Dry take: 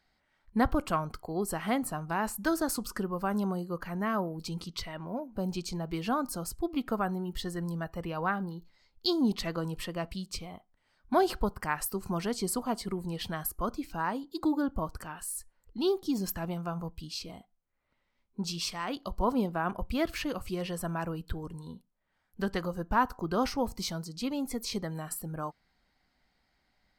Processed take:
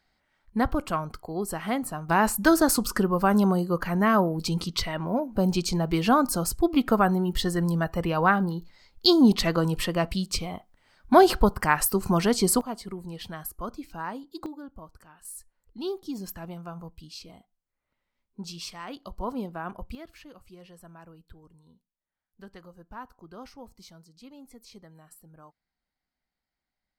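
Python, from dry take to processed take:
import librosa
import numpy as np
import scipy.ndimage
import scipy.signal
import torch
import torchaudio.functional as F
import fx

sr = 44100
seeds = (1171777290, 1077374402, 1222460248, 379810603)

y = fx.gain(x, sr, db=fx.steps((0.0, 1.5), (2.09, 9.5), (12.61, -2.5), (14.46, -12.0), (15.25, -4.0), (19.95, -15.0)))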